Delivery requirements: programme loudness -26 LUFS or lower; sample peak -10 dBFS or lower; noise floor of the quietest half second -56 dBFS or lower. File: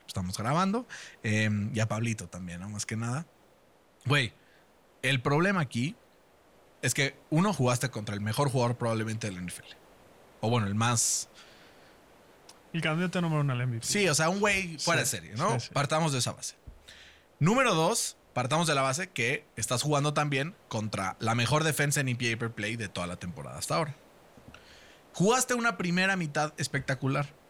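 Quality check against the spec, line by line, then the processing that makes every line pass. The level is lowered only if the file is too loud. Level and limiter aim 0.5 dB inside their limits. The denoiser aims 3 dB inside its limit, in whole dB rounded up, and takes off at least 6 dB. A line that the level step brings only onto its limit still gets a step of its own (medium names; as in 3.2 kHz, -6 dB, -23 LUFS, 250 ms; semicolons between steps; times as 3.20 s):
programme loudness -29.0 LUFS: pass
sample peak -14.0 dBFS: pass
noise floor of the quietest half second -62 dBFS: pass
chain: none needed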